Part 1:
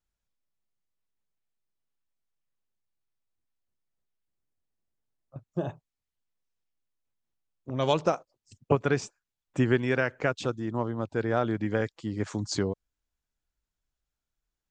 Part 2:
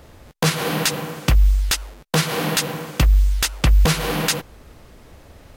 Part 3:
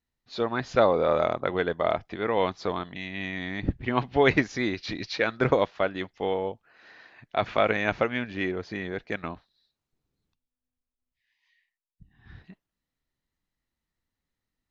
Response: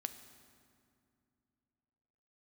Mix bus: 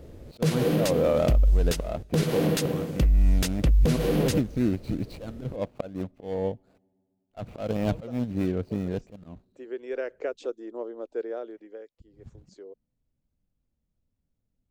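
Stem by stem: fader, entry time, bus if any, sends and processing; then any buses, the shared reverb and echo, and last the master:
-10.5 dB, 0.00 s, no send, high-pass 390 Hz 24 dB/octave; auto duck -17 dB, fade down 0.85 s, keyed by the third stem
-11.0 dB, 0.00 s, send -16.5 dB, none
-1.5 dB, 0.00 s, muted 6.78–7.30 s, send -22.5 dB, median filter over 25 samples; peaking EQ 380 Hz -12 dB 0.88 oct; slow attack 249 ms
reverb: on, RT60 2.5 s, pre-delay 4 ms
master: resonant low shelf 660 Hz +10.5 dB, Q 1.5; peak limiter -14 dBFS, peak gain reduction 8.5 dB

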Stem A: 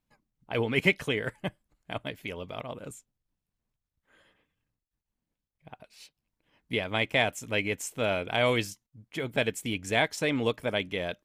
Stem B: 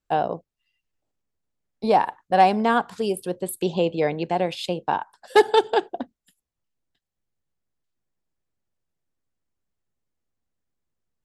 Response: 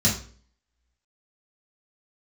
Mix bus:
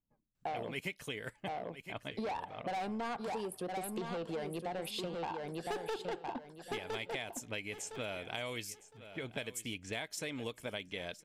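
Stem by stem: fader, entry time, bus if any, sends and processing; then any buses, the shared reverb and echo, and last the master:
-7.0 dB, 0.00 s, no send, echo send -19.5 dB, level-controlled noise filter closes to 600 Hz, open at -26.5 dBFS; treble shelf 3.9 kHz +11.5 dB
-2.5 dB, 0.35 s, no send, echo send -6 dB, saturation -21.5 dBFS, distortion -6 dB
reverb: none
echo: feedback delay 1011 ms, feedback 19%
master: compression, threshold -37 dBFS, peak gain reduction 14 dB

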